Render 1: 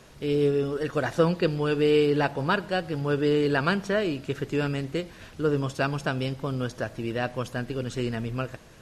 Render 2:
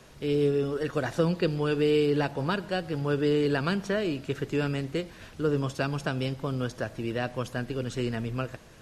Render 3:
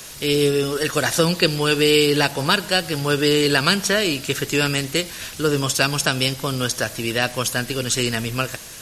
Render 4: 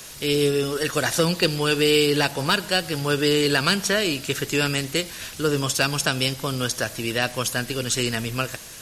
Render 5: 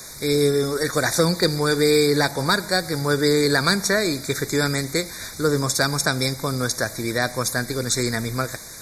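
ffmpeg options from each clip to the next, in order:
ffmpeg -i in.wav -filter_complex "[0:a]acrossover=split=420|3000[link_01][link_02][link_03];[link_02]acompressor=threshold=-27dB:ratio=6[link_04];[link_01][link_04][link_03]amix=inputs=3:normalize=0,volume=-1dB" out.wav
ffmpeg -i in.wav -af "crystalizer=i=9:c=0,volume=5dB" out.wav
ffmpeg -i in.wav -af "asoftclip=type=hard:threshold=-7.5dB,volume=-2.5dB" out.wav
ffmpeg -i in.wav -af "asuperstop=centerf=2900:order=20:qfactor=2.6,volume=2dB" out.wav

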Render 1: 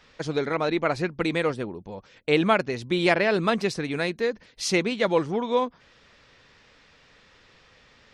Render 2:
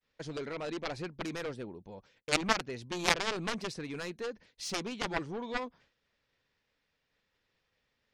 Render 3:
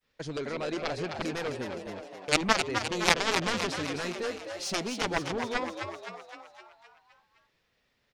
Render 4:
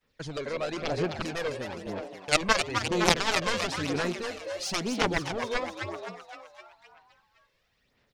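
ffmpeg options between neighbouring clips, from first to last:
ffmpeg -i in.wav -af "equalizer=frequency=1200:width_type=o:width=0.32:gain=-3.5,aeval=exprs='0.398*(cos(1*acos(clip(val(0)/0.398,-1,1)))-cos(1*PI/2))+0.178*(cos(3*acos(clip(val(0)/0.398,-1,1)))-cos(3*PI/2))':channel_layout=same,agate=range=-33dB:threshold=-56dB:ratio=3:detection=peak" out.wav
ffmpeg -i in.wav -filter_complex "[0:a]asplit=8[link_01][link_02][link_03][link_04][link_05][link_06][link_07][link_08];[link_02]adelay=258,afreqshift=89,volume=-6.5dB[link_09];[link_03]adelay=516,afreqshift=178,volume=-11.5dB[link_10];[link_04]adelay=774,afreqshift=267,volume=-16.6dB[link_11];[link_05]adelay=1032,afreqshift=356,volume=-21.6dB[link_12];[link_06]adelay=1290,afreqshift=445,volume=-26.6dB[link_13];[link_07]adelay=1548,afreqshift=534,volume=-31.7dB[link_14];[link_08]adelay=1806,afreqshift=623,volume=-36.7dB[link_15];[link_01][link_09][link_10][link_11][link_12][link_13][link_14][link_15]amix=inputs=8:normalize=0,volume=4dB" out.wav
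ffmpeg -i in.wav -af "aphaser=in_gain=1:out_gain=1:delay=1.9:decay=0.5:speed=1:type=sinusoidal" out.wav

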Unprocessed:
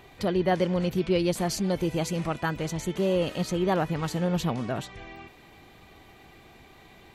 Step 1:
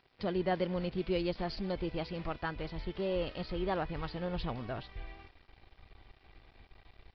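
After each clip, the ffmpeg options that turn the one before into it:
ffmpeg -i in.wav -af "asubboost=boost=10.5:cutoff=54,aresample=11025,aeval=exprs='sgn(val(0))*max(abs(val(0))-0.00335,0)':channel_layout=same,aresample=44100,volume=-7dB" out.wav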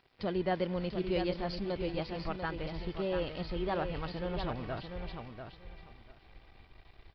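ffmpeg -i in.wav -af "aecho=1:1:692|1384|2076:0.447|0.0804|0.0145" out.wav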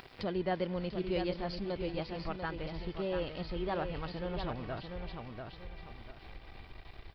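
ffmpeg -i in.wav -af "acompressor=mode=upward:threshold=-36dB:ratio=2.5,volume=-1.5dB" out.wav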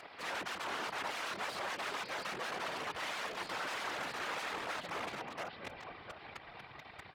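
ffmpeg -i in.wav -af "aeval=exprs='(mod(70.8*val(0)+1,2)-1)/70.8':channel_layout=same,afftfilt=real='hypot(re,im)*cos(2*PI*random(0))':imag='hypot(re,im)*sin(2*PI*random(1))':win_size=512:overlap=0.75,bandpass=frequency=1200:width_type=q:width=0.64:csg=0,volume=12.5dB" out.wav

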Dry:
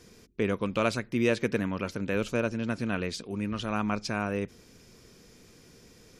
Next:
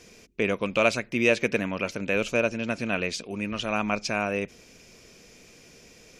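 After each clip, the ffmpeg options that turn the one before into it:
ffmpeg -i in.wav -af "equalizer=frequency=100:width_type=o:width=0.67:gain=-4,equalizer=frequency=630:width_type=o:width=0.67:gain=7,equalizer=frequency=2500:width_type=o:width=0.67:gain=10,equalizer=frequency=6300:width_type=o:width=0.67:gain=6" out.wav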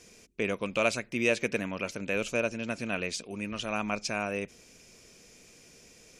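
ffmpeg -i in.wav -af "equalizer=frequency=8900:width=1.1:gain=7.5,volume=-5dB" out.wav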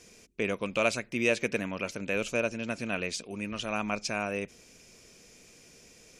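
ffmpeg -i in.wav -af anull out.wav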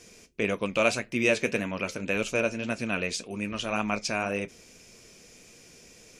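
ffmpeg -i in.wav -af "flanger=delay=8.5:depth=4.1:regen=-60:speed=1.8:shape=sinusoidal,volume=7dB" out.wav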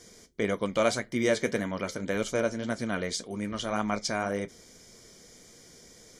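ffmpeg -i in.wav -af "asuperstop=centerf=2600:order=4:qfactor=3.7" out.wav

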